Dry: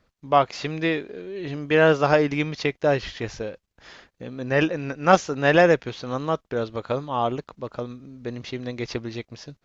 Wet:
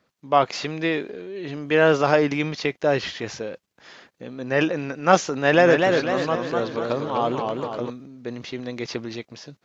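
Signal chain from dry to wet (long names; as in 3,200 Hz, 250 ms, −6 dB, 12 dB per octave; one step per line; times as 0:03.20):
high-pass filter 150 Hz 12 dB per octave
transient designer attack 0 dB, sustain +5 dB
0:05.33–0:07.90: feedback echo with a swinging delay time 247 ms, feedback 53%, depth 124 cents, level −4 dB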